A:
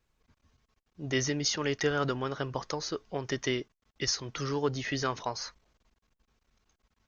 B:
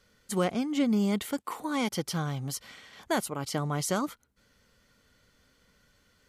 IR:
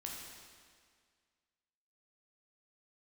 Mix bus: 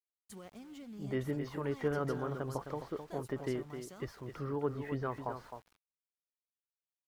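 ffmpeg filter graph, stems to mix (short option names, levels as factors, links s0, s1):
-filter_complex "[0:a]lowpass=1200,volume=0.596,asplit=2[s0][s1];[s1]volume=0.376[s2];[1:a]highpass=59,alimiter=level_in=1.5:limit=0.0631:level=0:latency=1:release=342,volume=0.668,volume=0.188,asplit=2[s3][s4];[s4]volume=0.126[s5];[s2][s5]amix=inputs=2:normalize=0,aecho=0:1:261:1[s6];[s0][s3][s6]amix=inputs=3:normalize=0,aeval=exprs='val(0)*gte(abs(val(0)),0.00133)':c=same"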